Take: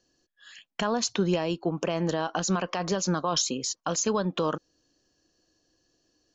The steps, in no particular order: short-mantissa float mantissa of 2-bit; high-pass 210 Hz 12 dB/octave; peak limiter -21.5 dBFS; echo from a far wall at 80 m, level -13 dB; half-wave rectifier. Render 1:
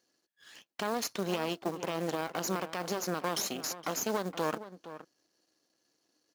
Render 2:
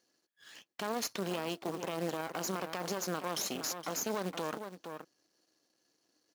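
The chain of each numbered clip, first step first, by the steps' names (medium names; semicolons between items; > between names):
half-wave rectifier > high-pass > short-mantissa float > peak limiter > echo from a far wall; echo from a far wall > short-mantissa float > peak limiter > half-wave rectifier > high-pass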